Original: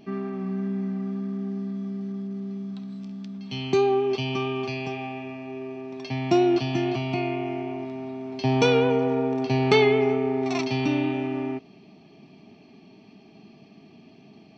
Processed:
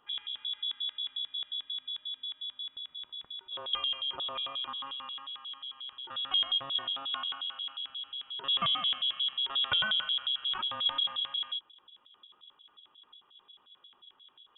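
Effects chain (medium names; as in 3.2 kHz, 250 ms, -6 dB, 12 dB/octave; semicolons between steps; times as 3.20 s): vibrato 2.8 Hz 6.7 cents; LFO band-pass square 5.6 Hz 250–2400 Hz; frequency inversion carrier 3.6 kHz; trim -1.5 dB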